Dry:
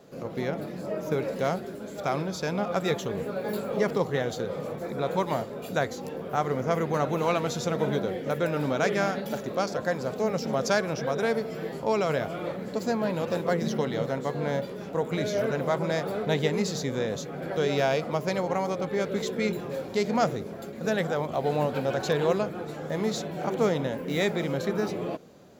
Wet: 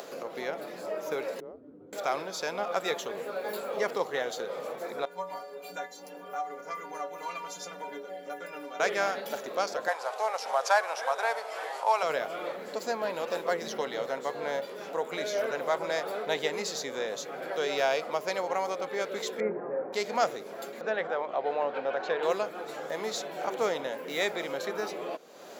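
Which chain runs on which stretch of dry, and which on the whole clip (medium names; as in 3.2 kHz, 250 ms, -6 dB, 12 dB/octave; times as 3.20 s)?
1.40–1.93 s: Butterworth band-pass 210 Hz, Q 0.86 + frequency shift -110 Hz + tilt EQ +2 dB/octave
5.05–8.80 s: band-stop 3.8 kHz, Q 8.6 + inharmonic resonator 86 Hz, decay 0.59 s, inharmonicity 0.03
9.88–12.03 s: CVSD coder 64 kbps + resonant high-pass 820 Hz, resonance Q 2.3 + treble shelf 9.8 kHz -7.5 dB
19.40–19.93 s: Chebyshev low-pass 1.9 kHz, order 4 + tilt shelf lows +7 dB, about 1.2 kHz
20.81–22.23 s: low-pass 2.5 kHz + peaking EQ 140 Hz -4 dB 0.37 oct + hum notches 50/100/150/200/250/300/350 Hz
whole clip: upward compressor, threshold -28 dBFS; high-pass 520 Hz 12 dB/octave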